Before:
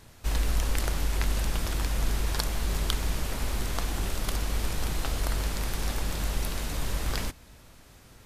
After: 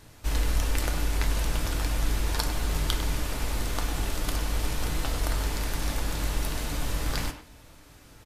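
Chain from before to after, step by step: speakerphone echo 100 ms, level -8 dB; FDN reverb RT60 0.34 s, low-frequency decay 1×, high-frequency decay 0.85×, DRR 6.5 dB

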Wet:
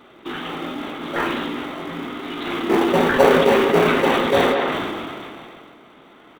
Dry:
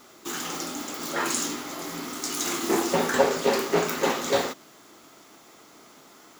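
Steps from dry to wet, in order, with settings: resampled via 8 kHz; in parallel at -12 dB: sample-rate reducer 1.7 kHz, jitter 0%; on the sum: speakerphone echo 190 ms, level -14 dB; decay stretcher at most 23 dB/s; trim +4 dB

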